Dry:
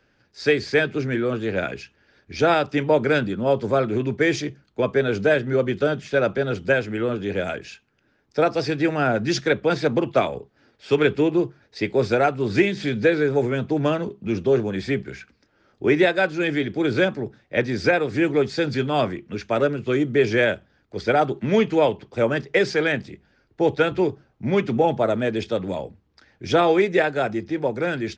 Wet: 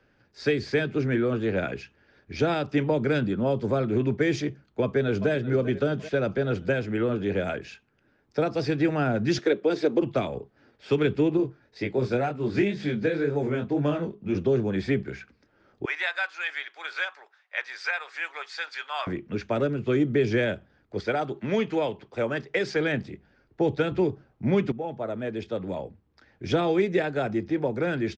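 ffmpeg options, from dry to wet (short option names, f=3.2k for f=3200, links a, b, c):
-filter_complex "[0:a]asplit=2[a][b];[b]afade=t=in:st=4.82:d=0.01,afade=t=out:st=5.3:d=0.01,aecho=0:1:390|780|1170|1560|1950:0.158489|0.0871691|0.047943|0.0263687|0.0145028[c];[a][c]amix=inputs=2:normalize=0,asettb=1/sr,asplit=3[d][e][f];[d]atrim=end=9.384[g];[e]atrim=start=9.38:end=10.02,asetpts=PTS-STARTPTS,afade=t=in:d=0.004:c=qsin,afade=t=out:st=0.636:d=0.004:c=qsin,highpass=f=370:t=q:w=2.1[h];[f]atrim=start=10.016[i];[g][h]acrossfade=d=0.004:c1=hsin:c2=qsin[j];[j][i]acrossfade=d=0.004:c1=qsin:c2=hsin,asettb=1/sr,asplit=3[k][l][m];[k]atrim=end=11.374[n];[l]atrim=start=11.37:end=14.35,asetpts=PTS-STARTPTS,afade=t=in:d=0.004:c=qsin,afade=t=out:st=2.976:d=0.004:c=qsin,flanger=delay=20:depth=5.4:speed=2[o];[m]atrim=start=14.346[p];[n][o]acrossfade=d=0.004:c1=hsin:c2=qsin[q];[q][p]acrossfade=d=0.004:c1=qsin:c2=hsin,asettb=1/sr,asplit=3[r][s][t];[r]atrim=end=15.854[u];[s]atrim=start=15.85:end=19.07,asetpts=PTS-STARTPTS,afade=t=in:d=0.004:c=qsin,afade=t=out:st=3.216:d=0.004:c=qsin,highpass=f=970:w=0.5412,highpass=f=970:w=1.3066[v];[t]atrim=start=19.066[w];[u][v]acrossfade=d=0.004:c1=hsin:c2=qsin[x];[x][w]acrossfade=d=0.004:c1=qsin:c2=hsin,asettb=1/sr,asplit=3[y][z][aa];[y]atrim=end=21.004[ab];[z]atrim=start=21:end=22.76,asetpts=PTS-STARTPTS,afade=t=in:d=0.004:c=qsin,afade=t=out:st=1.756:d=0.004:c=qsin,lowshelf=f=410:g=-8[ac];[aa]atrim=start=22.756[ad];[ab][ac]acrossfade=d=0.004:c1=hsin:c2=qsin[ae];[ae][ad]acrossfade=d=0.004:c1=qsin:c2=hsin,asplit=2[af][ag];[af]atrim=end=24.72,asetpts=PTS-STARTPTS,afade=t=out:st=24.716:d=0.004:c=hsin:silence=0.158489[ah];[ag]atrim=start=24.72,asetpts=PTS-STARTPTS,afade=t=in:d=1.87:silence=0.158489[ai];[ah][ai]concat=n=2:v=0:a=1,highshelf=f=3.4k:g=-9,acrossover=split=310|3000[aj][ak][al];[ak]acompressor=threshold=-25dB:ratio=6[am];[aj][am][al]amix=inputs=3:normalize=0"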